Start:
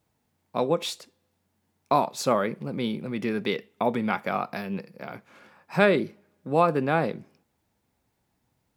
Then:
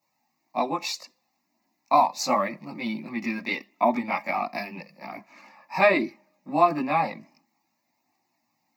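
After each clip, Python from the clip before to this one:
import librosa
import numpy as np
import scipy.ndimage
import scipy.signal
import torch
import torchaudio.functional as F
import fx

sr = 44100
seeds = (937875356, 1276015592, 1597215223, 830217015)

y = scipy.signal.sosfilt(scipy.signal.butter(4, 210.0, 'highpass', fs=sr, output='sos'), x)
y = fx.chorus_voices(y, sr, voices=4, hz=0.23, base_ms=19, depth_ms=2.0, mix_pct=65)
y = fx.fixed_phaser(y, sr, hz=2200.0, stages=8)
y = F.gain(torch.from_numpy(y), 8.0).numpy()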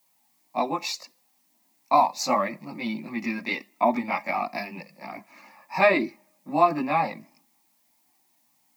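y = fx.dmg_noise_colour(x, sr, seeds[0], colour='blue', level_db=-68.0)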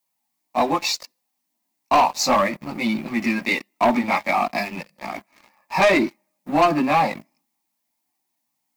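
y = fx.leveller(x, sr, passes=3)
y = F.gain(torch.from_numpy(y), -3.5).numpy()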